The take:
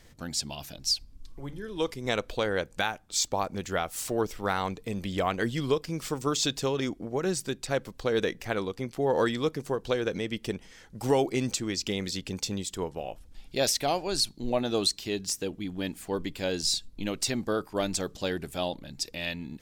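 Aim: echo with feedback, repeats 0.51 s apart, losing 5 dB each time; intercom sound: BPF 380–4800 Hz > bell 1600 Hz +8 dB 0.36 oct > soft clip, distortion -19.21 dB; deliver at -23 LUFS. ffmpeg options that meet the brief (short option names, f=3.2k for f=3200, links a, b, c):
-af "highpass=380,lowpass=4.8k,equalizer=f=1.6k:t=o:w=0.36:g=8,aecho=1:1:510|1020|1530|2040|2550|3060|3570:0.562|0.315|0.176|0.0988|0.0553|0.031|0.0173,asoftclip=threshold=-17dB,volume=8dB"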